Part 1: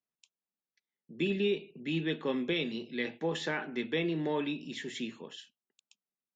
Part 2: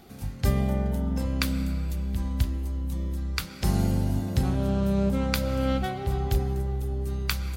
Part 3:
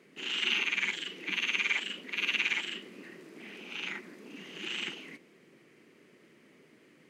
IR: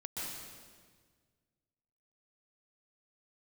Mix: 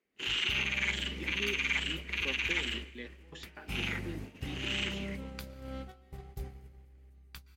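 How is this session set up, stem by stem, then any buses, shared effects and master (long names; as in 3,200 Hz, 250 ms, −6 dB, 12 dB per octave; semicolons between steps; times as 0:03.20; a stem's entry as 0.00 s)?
−10.5 dB, 0.00 s, no bus, no send, gate pattern "x.xxx.x.." 122 BPM −24 dB
−16.5 dB, 0.05 s, bus A, send −20.5 dB, no processing
+1.5 dB, 0.00 s, bus A, send −21 dB, low-shelf EQ 180 Hz −10.5 dB
bus A: 0.0 dB, noise gate −41 dBFS, range −33 dB; brickwall limiter −20.5 dBFS, peak gain reduction 8.5 dB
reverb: on, RT60 1.6 s, pre-delay 117 ms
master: no processing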